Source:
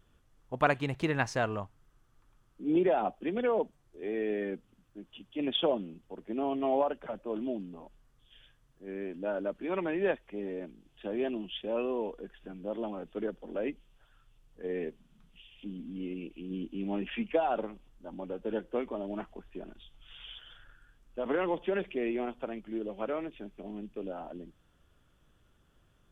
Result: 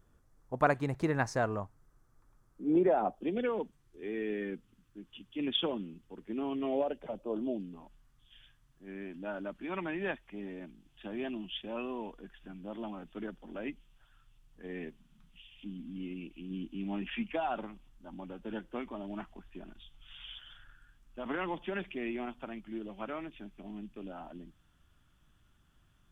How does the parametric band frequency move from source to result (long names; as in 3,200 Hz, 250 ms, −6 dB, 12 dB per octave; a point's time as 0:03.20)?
parametric band −12 dB 0.82 octaves
0:03.11 3,000 Hz
0:03.52 630 Hz
0:06.52 630 Hz
0:07.42 2,400 Hz
0:07.80 480 Hz